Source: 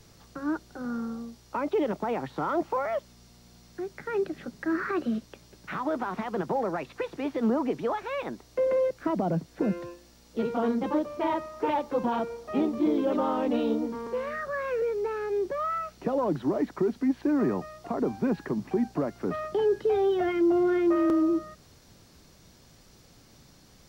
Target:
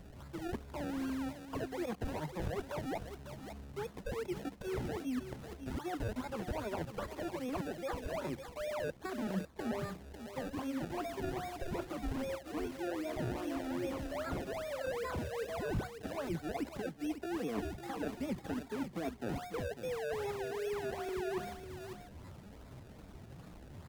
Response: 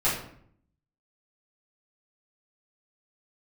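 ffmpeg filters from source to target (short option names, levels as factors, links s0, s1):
-filter_complex "[0:a]afftfilt=real='re*pow(10,18/40*sin(2*PI*(1.6*log(max(b,1)*sr/1024/100)/log(2)-(-2)*(pts-256)/sr)))':imag='im*pow(10,18/40*sin(2*PI*(1.6*log(max(b,1)*sr/1024/100)/log(2)-(-2)*(pts-256)/sr)))':win_size=1024:overlap=0.75,areverse,acompressor=threshold=0.0224:ratio=20,areverse,acrusher=samples=33:mix=1:aa=0.000001:lfo=1:lforange=33:lforate=2.5,asetrate=50951,aresample=44100,atempo=0.865537,aecho=1:1:549:0.299,acrossover=split=550|2300[s0][s1][s2];[s2]alimiter=level_in=7.08:limit=0.0631:level=0:latency=1:release=13,volume=0.141[s3];[s0][s1][s3]amix=inputs=3:normalize=0,equalizer=f=78:t=o:w=2.6:g=8,volume=0.668"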